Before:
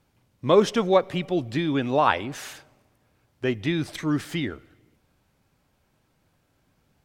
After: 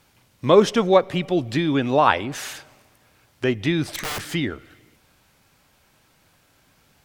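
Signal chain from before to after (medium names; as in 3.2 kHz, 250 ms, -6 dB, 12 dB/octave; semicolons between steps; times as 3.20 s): 3.93–4.33 s: integer overflow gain 26.5 dB; tape noise reduction on one side only encoder only; trim +3.5 dB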